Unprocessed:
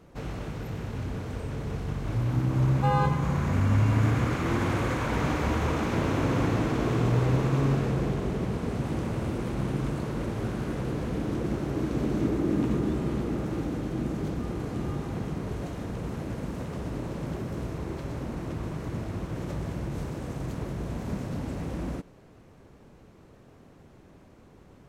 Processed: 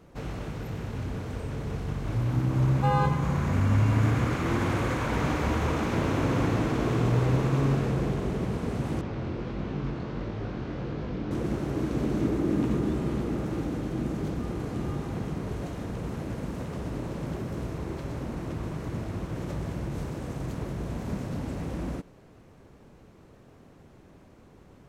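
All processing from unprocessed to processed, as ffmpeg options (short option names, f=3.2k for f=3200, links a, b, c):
-filter_complex "[0:a]asettb=1/sr,asplit=3[a][b][c];[a]atrim=end=9.014[d];[b]atrim=start=9.01:end=11.31,asetpts=PTS-STARTPTS,afade=t=in:d=0.004:c=qsin,afade=t=out:st=2.296:d=0.004:c=qsin,lowpass=f=5.2k:w=0.5412,lowpass=f=5.2k:w=1.3066,flanger=delay=19:depth=4.9:speed=1.5[e];[c]atrim=start=11.306[f];[d][e]acrossfade=d=0.004:c1=hsin:c2=qsin[g];[g][f]acrossfade=d=0.004:c1=qsin:c2=hsin"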